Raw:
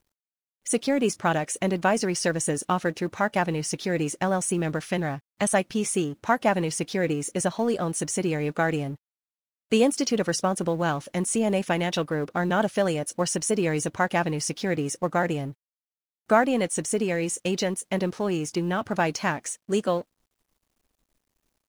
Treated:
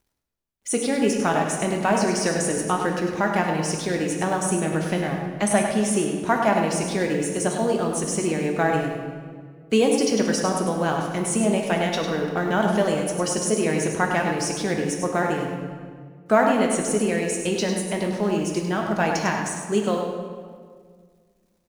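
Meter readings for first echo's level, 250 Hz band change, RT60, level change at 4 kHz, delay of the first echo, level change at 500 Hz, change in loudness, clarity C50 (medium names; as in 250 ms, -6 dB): -7.5 dB, +3.5 dB, 1.8 s, +2.5 dB, 101 ms, +3.0 dB, +3.0 dB, 2.5 dB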